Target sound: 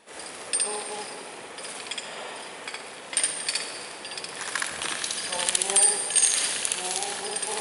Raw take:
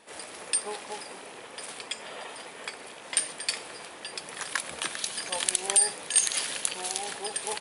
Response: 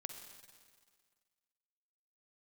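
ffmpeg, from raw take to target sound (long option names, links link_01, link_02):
-filter_complex "[0:a]asplit=2[link_01][link_02];[1:a]atrim=start_sample=2205,asetrate=43659,aresample=44100,adelay=66[link_03];[link_02][link_03]afir=irnorm=-1:irlink=0,volume=4dB[link_04];[link_01][link_04]amix=inputs=2:normalize=0"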